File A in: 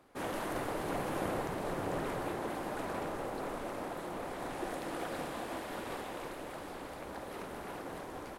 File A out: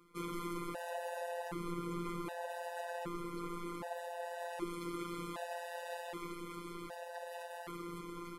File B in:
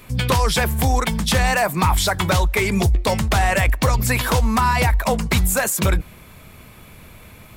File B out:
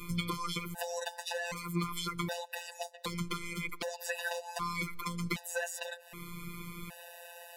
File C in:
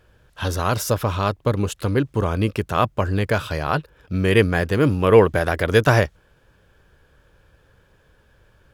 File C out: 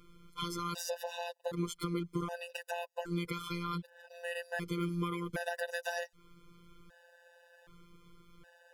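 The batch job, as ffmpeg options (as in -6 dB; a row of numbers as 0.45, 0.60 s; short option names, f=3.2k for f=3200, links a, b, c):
-filter_complex "[0:a]acrossover=split=190|2600|6400[a][b][c][d];[a]acompressor=threshold=-33dB:ratio=4[e];[b]acompressor=threshold=-24dB:ratio=4[f];[c]acompressor=threshold=-33dB:ratio=4[g];[d]acompressor=threshold=-40dB:ratio=4[h];[e][f][g][h]amix=inputs=4:normalize=0,afftfilt=real='hypot(re,im)*cos(PI*b)':imag='0':win_size=1024:overlap=0.75,acompressor=threshold=-36dB:ratio=3,afftfilt=real='re*gt(sin(2*PI*0.65*pts/sr)*(1-2*mod(floor(b*sr/1024/500),2)),0)':imag='im*gt(sin(2*PI*0.65*pts/sr)*(1-2*mod(floor(b*sr/1024/500),2)),0)':win_size=1024:overlap=0.75,volume=4.5dB"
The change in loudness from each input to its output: -4.0, -19.0, -18.0 LU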